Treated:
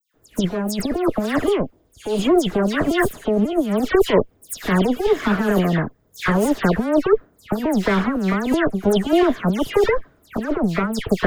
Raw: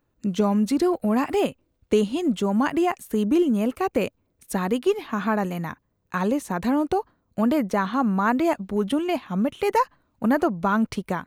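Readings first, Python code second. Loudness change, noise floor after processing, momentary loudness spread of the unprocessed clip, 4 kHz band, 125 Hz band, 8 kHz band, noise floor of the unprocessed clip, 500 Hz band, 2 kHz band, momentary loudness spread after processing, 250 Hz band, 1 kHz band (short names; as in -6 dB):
+4.0 dB, -60 dBFS, 7 LU, +7.5 dB, +7.0 dB, +6.0 dB, -72 dBFS, +5.5 dB, +6.0 dB, 8 LU, +3.0 dB, 0.0 dB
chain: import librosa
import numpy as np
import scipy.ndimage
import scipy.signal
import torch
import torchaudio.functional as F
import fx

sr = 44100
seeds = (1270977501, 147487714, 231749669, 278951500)

y = fx.lower_of_two(x, sr, delay_ms=0.6)
y = fx.over_compress(y, sr, threshold_db=-25.0, ratio=-0.5)
y = fx.small_body(y, sr, hz=(440.0, 630.0), ring_ms=25, db=10)
y = fx.dispersion(y, sr, late='lows', ms=143.0, hz=2800.0)
y = y * librosa.db_to_amplitude(5.5)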